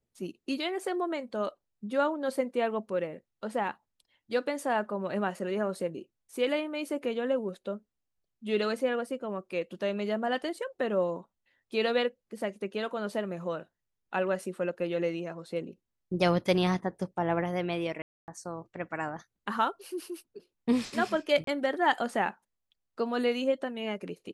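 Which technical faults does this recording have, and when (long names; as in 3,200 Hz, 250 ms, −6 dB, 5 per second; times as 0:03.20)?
0:18.02–0:18.28: drop-out 259 ms
0:21.44–0:21.47: drop-out 33 ms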